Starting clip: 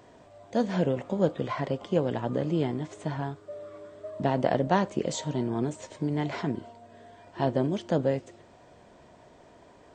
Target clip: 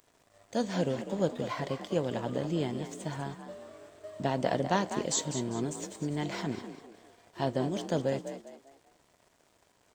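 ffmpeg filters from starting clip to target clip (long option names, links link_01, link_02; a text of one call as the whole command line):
ffmpeg -i in.wav -filter_complex "[0:a]aemphasis=mode=production:type=75fm,aeval=exprs='sgn(val(0))*max(abs(val(0))-0.00224,0)':channel_layout=same,asplit=2[link_01][link_02];[link_02]asplit=4[link_03][link_04][link_05][link_06];[link_03]adelay=199,afreqshift=47,volume=-10dB[link_07];[link_04]adelay=398,afreqshift=94,volume=-19.1dB[link_08];[link_05]adelay=597,afreqshift=141,volume=-28.2dB[link_09];[link_06]adelay=796,afreqshift=188,volume=-37.4dB[link_10];[link_07][link_08][link_09][link_10]amix=inputs=4:normalize=0[link_11];[link_01][link_11]amix=inputs=2:normalize=0,volume=-3.5dB" out.wav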